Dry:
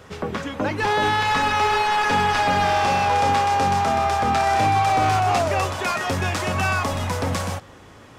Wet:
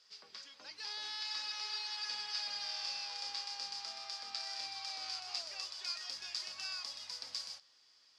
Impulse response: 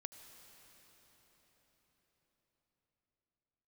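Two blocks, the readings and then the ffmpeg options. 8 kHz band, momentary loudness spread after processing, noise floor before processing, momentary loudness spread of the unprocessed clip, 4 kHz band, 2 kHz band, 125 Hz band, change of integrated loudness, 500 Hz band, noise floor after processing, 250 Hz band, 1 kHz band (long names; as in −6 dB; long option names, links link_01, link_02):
−14.0 dB, 7 LU, −45 dBFS, 7 LU, −8.0 dB, −24.0 dB, below −40 dB, −19.0 dB, −36.5 dB, −67 dBFS, below −40 dB, −32.5 dB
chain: -af "bandpass=frequency=4800:width_type=q:width=9.2:csg=0,volume=1.5dB"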